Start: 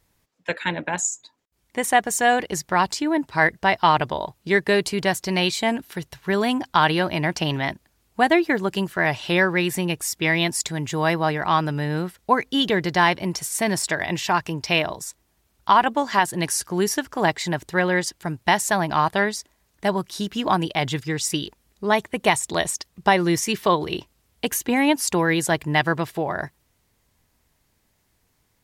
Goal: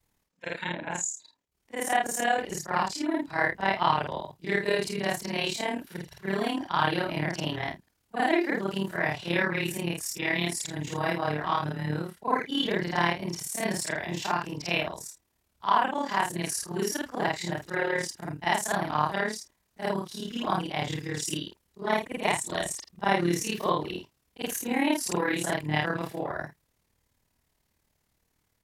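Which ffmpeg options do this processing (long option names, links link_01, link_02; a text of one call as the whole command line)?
ffmpeg -i in.wav -af "afftfilt=real='re':imag='-im':win_size=4096:overlap=0.75,tremolo=f=37:d=0.621" out.wav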